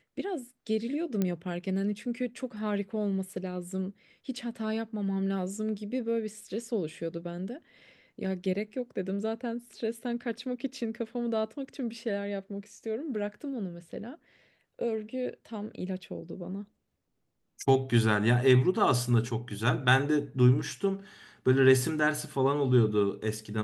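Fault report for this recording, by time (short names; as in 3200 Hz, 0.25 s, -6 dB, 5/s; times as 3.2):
1.22 pop -16 dBFS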